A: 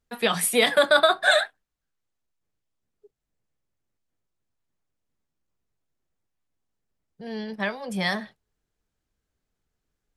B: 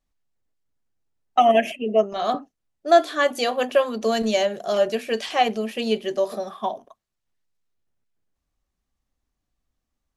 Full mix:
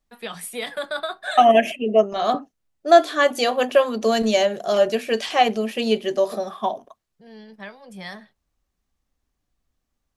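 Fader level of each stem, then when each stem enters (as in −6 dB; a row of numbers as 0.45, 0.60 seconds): −10.0, +2.5 decibels; 0.00, 0.00 seconds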